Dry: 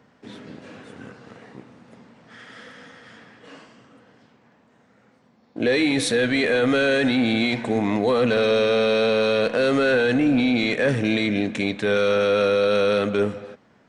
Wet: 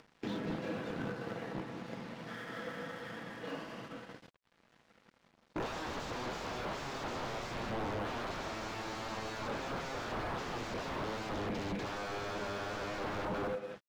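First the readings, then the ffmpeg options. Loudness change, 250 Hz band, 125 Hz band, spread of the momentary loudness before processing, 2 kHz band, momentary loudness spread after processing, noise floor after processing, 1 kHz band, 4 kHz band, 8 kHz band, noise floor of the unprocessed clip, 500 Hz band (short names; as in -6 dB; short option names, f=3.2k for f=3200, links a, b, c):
-19.5 dB, -19.0 dB, -12.5 dB, 4 LU, -17.0 dB, 7 LU, -70 dBFS, -8.5 dB, -17.0 dB, -13.0 dB, -59 dBFS, -20.0 dB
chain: -filter_complex "[0:a]aecho=1:1:6:0.34,asplit=2[a][b];[b]adelay=200,highpass=300,lowpass=3.4k,asoftclip=type=hard:threshold=-19.5dB,volume=-9dB[c];[a][c]amix=inputs=2:normalize=0,agate=range=-27dB:threshold=-51dB:ratio=16:detection=peak,alimiter=limit=-19dB:level=0:latency=1:release=106,aresample=16000,aeval=exprs='0.0211*(abs(mod(val(0)/0.0211+3,4)-2)-1)':c=same,aresample=44100,acompressor=mode=upward:threshold=-42dB:ratio=2.5,lowpass=4.6k,acrossover=split=1300[d][e];[e]acompressor=threshold=-57dB:ratio=6[f];[d][f]amix=inputs=2:normalize=0,highshelf=f=3k:g=8,aeval=exprs='sgn(val(0))*max(abs(val(0))-0.00106,0)':c=same,volume=4dB"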